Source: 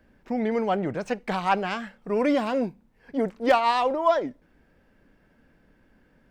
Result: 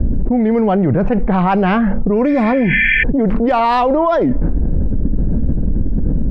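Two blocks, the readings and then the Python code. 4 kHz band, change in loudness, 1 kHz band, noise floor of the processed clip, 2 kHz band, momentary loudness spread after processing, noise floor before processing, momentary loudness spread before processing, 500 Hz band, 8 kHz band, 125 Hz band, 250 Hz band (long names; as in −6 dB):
+5.0 dB, +10.0 dB, +8.0 dB, −16 dBFS, +15.5 dB, 7 LU, −63 dBFS, 11 LU, +9.0 dB, can't be measured, +22.5 dB, +14.5 dB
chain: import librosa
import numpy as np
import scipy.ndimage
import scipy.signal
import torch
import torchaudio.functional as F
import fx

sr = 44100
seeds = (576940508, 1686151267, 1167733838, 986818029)

y = fx.env_lowpass(x, sr, base_hz=390.0, full_db=-17.5)
y = fx.spec_repair(y, sr, seeds[0], start_s=2.31, length_s=0.69, low_hz=1500.0, high_hz=3400.0, source='before')
y = fx.riaa(y, sr, side='playback')
y = fx.env_flatten(y, sr, amount_pct=100)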